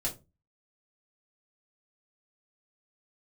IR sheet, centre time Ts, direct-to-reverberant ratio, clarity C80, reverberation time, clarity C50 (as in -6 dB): 15 ms, -4.5 dB, 21.5 dB, 0.25 s, 13.5 dB